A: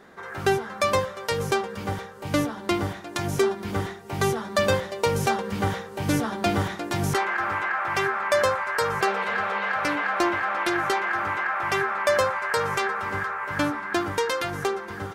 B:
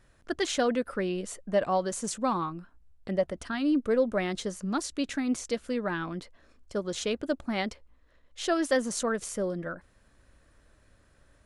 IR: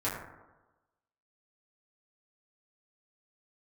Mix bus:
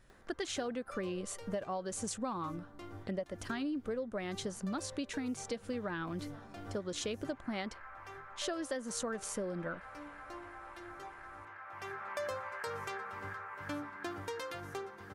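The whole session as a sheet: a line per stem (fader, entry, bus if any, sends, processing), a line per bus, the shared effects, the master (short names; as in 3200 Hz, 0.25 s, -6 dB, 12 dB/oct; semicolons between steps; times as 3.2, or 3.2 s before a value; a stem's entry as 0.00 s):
-16.5 dB, 0.10 s, send -18.5 dB, upward compressor, threshold -34 dBFS; auto duck -15 dB, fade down 0.40 s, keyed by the second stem
-2.0 dB, 0.00 s, no send, dry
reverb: on, RT60 1.1 s, pre-delay 5 ms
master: compressor 10:1, threshold -34 dBFS, peak gain reduction 13 dB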